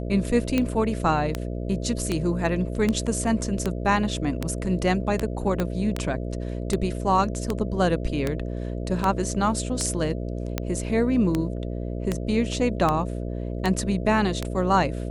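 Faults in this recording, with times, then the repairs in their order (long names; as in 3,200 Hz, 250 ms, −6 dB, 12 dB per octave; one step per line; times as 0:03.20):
mains buzz 60 Hz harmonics 11 −30 dBFS
scratch tick 78 rpm −10 dBFS
0:05.60: click −12 dBFS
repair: click removal
hum removal 60 Hz, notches 11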